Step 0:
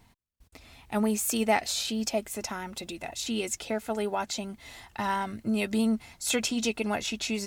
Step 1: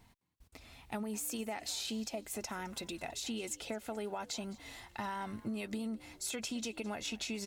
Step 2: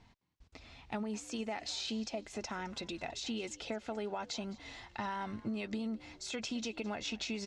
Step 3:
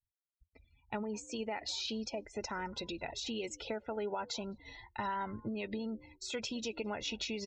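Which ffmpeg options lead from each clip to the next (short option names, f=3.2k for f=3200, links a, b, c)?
-filter_complex "[0:a]alimiter=limit=-22dB:level=0:latency=1:release=140,acompressor=threshold=-32dB:ratio=6,asplit=4[a][b][c][d];[b]adelay=211,afreqshift=78,volume=-20.5dB[e];[c]adelay=422,afreqshift=156,volume=-29.6dB[f];[d]adelay=633,afreqshift=234,volume=-38.7dB[g];[a][e][f][g]amix=inputs=4:normalize=0,volume=-3.5dB"
-af "lowpass=f=6.2k:w=0.5412,lowpass=f=6.2k:w=1.3066,volume=1dB"
-af "aecho=1:1:2.1:0.31,afftdn=nr=34:nf=-49,agate=range=-33dB:threshold=-49dB:ratio=3:detection=peak,volume=1dB"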